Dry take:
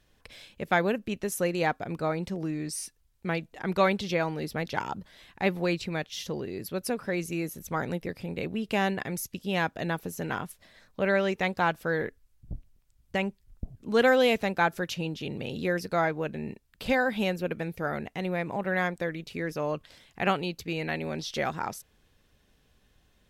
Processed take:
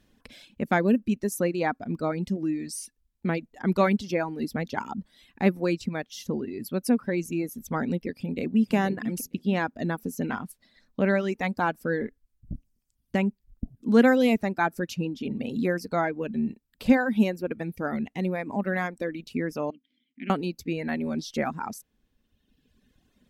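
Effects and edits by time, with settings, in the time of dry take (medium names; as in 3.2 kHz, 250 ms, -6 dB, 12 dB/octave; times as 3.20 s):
8.16–8.73 s: echo throw 470 ms, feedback 20%, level -7 dB
19.70–20.30 s: vowel filter i
whole clip: peaking EQ 240 Hz +13 dB 0.78 oct; reverb removal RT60 1.5 s; dynamic bell 3.3 kHz, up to -6 dB, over -48 dBFS, Q 2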